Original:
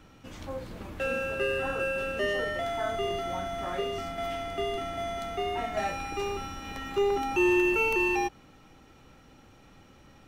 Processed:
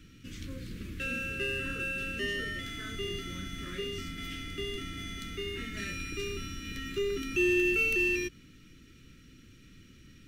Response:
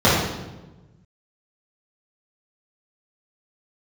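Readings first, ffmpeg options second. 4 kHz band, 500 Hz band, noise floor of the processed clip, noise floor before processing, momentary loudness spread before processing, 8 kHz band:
+1.0 dB, -7.0 dB, -56 dBFS, -56 dBFS, 14 LU, +1.5 dB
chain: -filter_complex "[0:a]asplit=2[s0][s1];[s1]asoftclip=type=tanh:threshold=0.0266,volume=0.266[s2];[s0][s2]amix=inputs=2:normalize=0,asuperstop=centerf=780:order=4:qfactor=0.51"

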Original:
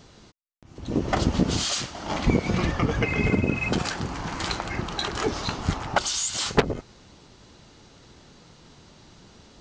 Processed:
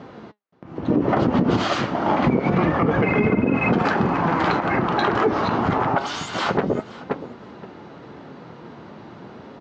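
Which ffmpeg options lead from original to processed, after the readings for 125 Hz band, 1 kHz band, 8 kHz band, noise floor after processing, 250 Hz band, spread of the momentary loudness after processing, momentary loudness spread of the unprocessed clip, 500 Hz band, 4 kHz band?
+3.0 dB, +9.5 dB, -13.0 dB, -43 dBFS, +7.0 dB, 22 LU, 7 LU, +7.5 dB, -3.0 dB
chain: -af "lowpass=1500,aecho=1:1:524|1048:0.112|0.0168,acontrast=84,flanger=delay=3.6:depth=5.8:regen=80:speed=0.28:shape=triangular,highpass=170,acompressor=threshold=0.0708:ratio=3,alimiter=level_in=10:limit=0.891:release=50:level=0:latency=1,volume=0.376"

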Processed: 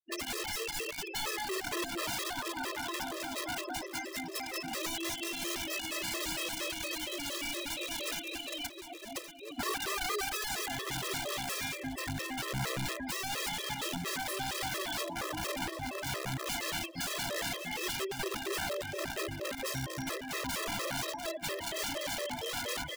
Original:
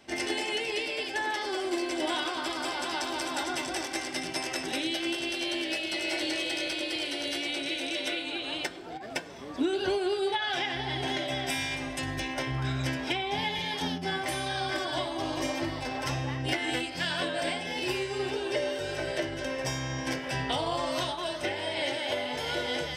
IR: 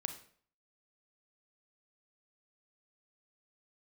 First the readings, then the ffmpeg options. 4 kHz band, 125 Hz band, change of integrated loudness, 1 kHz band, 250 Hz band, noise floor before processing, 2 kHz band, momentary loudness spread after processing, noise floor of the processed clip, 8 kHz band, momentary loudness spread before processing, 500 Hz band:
-5.0 dB, -6.5 dB, -4.5 dB, -5.0 dB, -7.5 dB, -38 dBFS, -5.0 dB, 3 LU, -44 dBFS, +2.5 dB, 3 LU, -7.5 dB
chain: -af "afftfilt=real='re*gte(hypot(re,im),0.0355)':imag='im*gte(hypot(re,im),0.0355)':win_size=1024:overlap=0.75,areverse,acompressor=mode=upward:threshold=0.002:ratio=2.5,areverse,aeval=exprs='(mod(22.4*val(0)+1,2)-1)/22.4':c=same,aecho=1:1:1117|2234:0.282|0.0479,afftfilt=real='re*gt(sin(2*PI*4.3*pts/sr)*(1-2*mod(floor(b*sr/1024/340),2)),0)':imag='im*gt(sin(2*PI*4.3*pts/sr)*(1-2*mod(floor(b*sr/1024/340),2)),0)':win_size=1024:overlap=0.75"

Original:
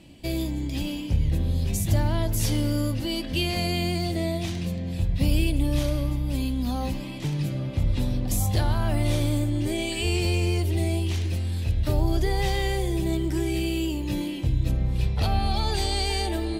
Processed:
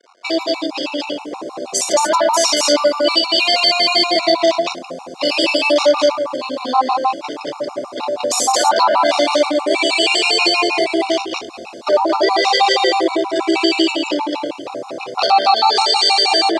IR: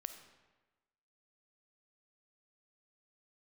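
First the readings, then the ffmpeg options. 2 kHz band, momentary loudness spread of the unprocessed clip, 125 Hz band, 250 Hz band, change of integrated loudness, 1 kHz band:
+15.0 dB, 5 LU, under -25 dB, +5.0 dB, +11.0 dB, +19.5 dB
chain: -filter_complex "[0:a]anlmdn=25.1,acrusher=bits=9:mix=0:aa=0.000001,highpass=f=490:w=0.5412,highpass=f=490:w=1.3066,equalizer=f=1100:t=q:w=4:g=7,equalizer=f=1800:t=q:w=4:g=-7,equalizer=f=3200:t=q:w=4:g=-3,equalizer=f=4800:t=q:w=4:g=5,lowpass=f=7400:w=0.5412,lowpass=f=7400:w=1.3066,asplit=2[s0][s1];[s1]adelay=24,volume=0.224[s2];[s0][s2]amix=inputs=2:normalize=0,aecho=1:1:58.31|227.4:0.631|0.891,alimiter=level_in=12.6:limit=0.891:release=50:level=0:latency=1,afftfilt=real='re*gt(sin(2*PI*6.3*pts/sr)*(1-2*mod(floor(b*sr/1024/730),2)),0)':imag='im*gt(sin(2*PI*6.3*pts/sr)*(1-2*mod(floor(b*sr/1024/730),2)),0)':win_size=1024:overlap=0.75,volume=0.891"

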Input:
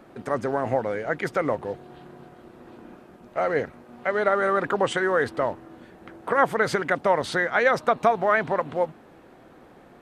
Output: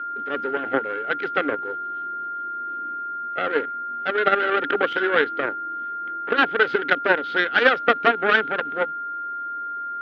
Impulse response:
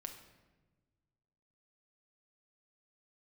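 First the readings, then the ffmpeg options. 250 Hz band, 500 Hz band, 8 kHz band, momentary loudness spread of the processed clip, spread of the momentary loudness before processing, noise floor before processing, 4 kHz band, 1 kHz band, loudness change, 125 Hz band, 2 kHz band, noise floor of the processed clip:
+0.5 dB, -0.5 dB, under -15 dB, 11 LU, 10 LU, -51 dBFS, +8.5 dB, +3.0 dB, +1.5 dB, -9.5 dB, +6.0 dB, -30 dBFS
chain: -af "aeval=exprs='0.501*(cos(1*acos(clip(val(0)/0.501,-1,1)))-cos(1*PI/2))+0.141*(cos(4*acos(clip(val(0)/0.501,-1,1)))-cos(4*PI/2))+0.0112*(cos(5*acos(clip(val(0)/0.501,-1,1)))-cos(5*PI/2))+0.0562*(cos(7*acos(clip(val(0)/0.501,-1,1)))-cos(7*PI/2))':c=same,aeval=exprs='val(0)+0.0178*sin(2*PI*1400*n/s)':c=same,highpass=250,equalizer=f=290:t=q:w=4:g=9,equalizer=f=420:t=q:w=4:g=6,equalizer=f=650:t=q:w=4:g=-6,equalizer=f=1000:t=q:w=4:g=-10,equalizer=f=1500:t=q:w=4:g=8,equalizer=f=3200:t=q:w=4:g=4,lowpass=f=3800:w=0.5412,lowpass=f=3800:w=1.3066,volume=1.41"

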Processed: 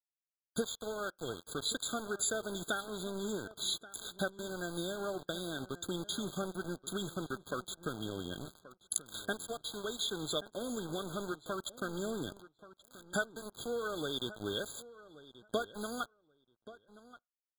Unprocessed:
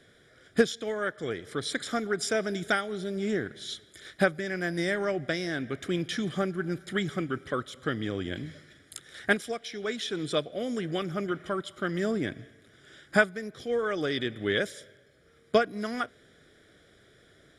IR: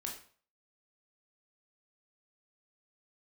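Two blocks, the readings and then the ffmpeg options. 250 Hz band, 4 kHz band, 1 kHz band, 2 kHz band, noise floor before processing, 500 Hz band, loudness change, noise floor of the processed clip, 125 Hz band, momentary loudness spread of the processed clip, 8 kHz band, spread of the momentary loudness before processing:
-9.0 dB, -2.5 dB, -7.5 dB, -11.5 dB, -60 dBFS, -9.5 dB, -8.0 dB, under -85 dBFS, -9.0 dB, 11 LU, +3.0 dB, 9 LU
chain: -filter_complex "[0:a]acompressor=threshold=0.00794:ratio=2,crystalizer=i=3.5:c=0,aeval=exprs='val(0)+0.000562*(sin(2*PI*50*n/s)+sin(2*PI*2*50*n/s)/2+sin(2*PI*3*50*n/s)/3+sin(2*PI*4*50*n/s)/4+sin(2*PI*5*50*n/s)/5)':c=same,aeval=exprs='val(0)*gte(abs(val(0)),0.01)':c=same,asplit=2[s0][s1];[s1]adelay=1130,lowpass=f=3000:p=1,volume=0.141,asplit=2[s2][s3];[s3]adelay=1130,lowpass=f=3000:p=1,volume=0.15[s4];[s0][s2][s4]amix=inputs=3:normalize=0,asplit=2[s5][s6];[1:a]atrim=start_sample=2205,asetrate=83790,aresample=44100,lowpass=2300[s7];[s6][s7]afir=irnorm=-1:irlink=0,volume=0.0944[s8];[s5][s8]amix=inputs=2:normalize=0,afftfilt=real='re*eq(mod(floor(b*sr/1024/1600),2),0)':imag='im*eq(mod(floor(b*sr/1024/1600),2),0)':win_size=1024:overlap=0.75"

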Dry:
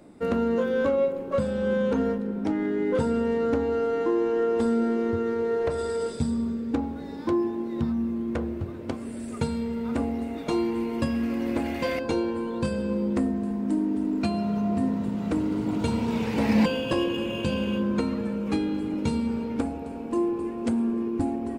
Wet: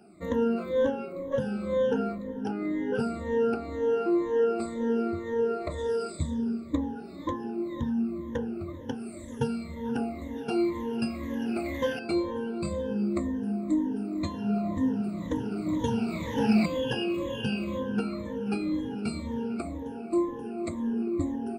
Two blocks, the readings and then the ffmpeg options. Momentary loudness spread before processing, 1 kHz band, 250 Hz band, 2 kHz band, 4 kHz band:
6 LU, -3.0 dB, -3.5 dB, -3.0 dB, -2.5 dB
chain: -af "afftfilt=real='re*pow(10,24/40*sin(2*PI*(1.1*log(max(b,1)*sr/1024/100)/log(2)-(-2)*(pts-256)/sr)))':imag='im*pow(10,24/40*sin(2*PI*(1.1*log(max(b,1)*sr/1024/100)/log(2)-(-2)*(pts-256)/sr)))':win_size=1024:overlap=0.75,volume=0.376"

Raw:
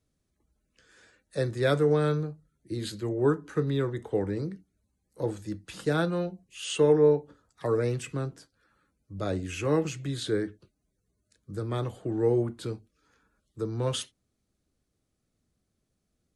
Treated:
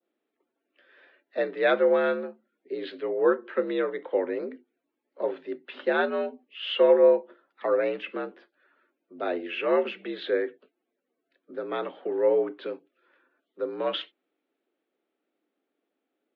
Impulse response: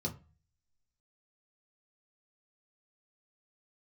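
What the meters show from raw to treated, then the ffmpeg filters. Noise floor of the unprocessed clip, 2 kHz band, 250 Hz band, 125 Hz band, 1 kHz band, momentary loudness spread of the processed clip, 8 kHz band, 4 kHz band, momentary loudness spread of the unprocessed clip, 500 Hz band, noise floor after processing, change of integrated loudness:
-79 dBFS, +6.0 dB, -3.0 dB, under -20 dB, +4.5 dB, 16 LU, under -30 dB, +2.0 dB, 14 LU, +3.5 dB, -83 dBFS, +2.0 dB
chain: -af "adynamicequalizer=threshold=0.00631:dfrequency=2300:dqfactor=0.76:tfrequency=2300:tqfactor=0.76:attack=5:release=100:ratio=0.375:range=2:mode=boostabove:tftype=bell,highpass=f=220:t=q:w=0.5412,highpass=f=220:t=q:w=1.307,lowpass=f=3300:t=q:w=0.5176,lowpass=f=3300:t=q:w=0.7071,lowpass=f=3300:t=q:w=1.932,afreqshift=65,volume=1.33"

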